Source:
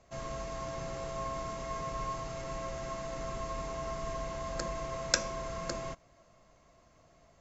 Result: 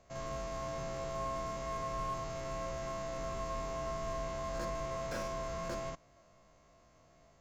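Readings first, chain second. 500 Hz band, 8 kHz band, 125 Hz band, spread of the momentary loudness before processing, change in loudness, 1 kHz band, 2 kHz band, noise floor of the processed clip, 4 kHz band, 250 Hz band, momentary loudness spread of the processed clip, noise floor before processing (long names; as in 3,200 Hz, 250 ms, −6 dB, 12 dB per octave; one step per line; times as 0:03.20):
−0.5 dB, can't be measured, −1.5 dB, 9 LU, −2.0 dB, −0.5 dB, −5.0 dB, −65 dBFS, −8.5 dB, −1.5 dB, 2 LU, −64 dBFS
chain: spectrum averaged block by block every 50 ms
slew-rate limiting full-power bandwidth 23 Hz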